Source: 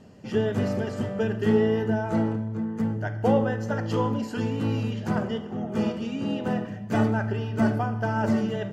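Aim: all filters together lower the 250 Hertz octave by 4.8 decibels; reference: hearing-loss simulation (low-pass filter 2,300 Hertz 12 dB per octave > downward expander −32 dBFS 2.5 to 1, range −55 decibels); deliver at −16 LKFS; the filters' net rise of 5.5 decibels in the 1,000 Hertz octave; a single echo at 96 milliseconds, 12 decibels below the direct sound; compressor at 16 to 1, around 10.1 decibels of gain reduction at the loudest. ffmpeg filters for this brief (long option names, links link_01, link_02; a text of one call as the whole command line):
ffmpeg -i in.wav -af "equalizer=frequency=250:width_type=o:gain=-6,equalizer=frequency=1000:width_type=o:gain=7.5,acompressor=threshold=-27dB:ratio=16,lowpass=2300,aecho=1:1:96:0.251,agate=range=-55dB:threshold=-32dB:ratio=2.5,volume=17dB" out.wav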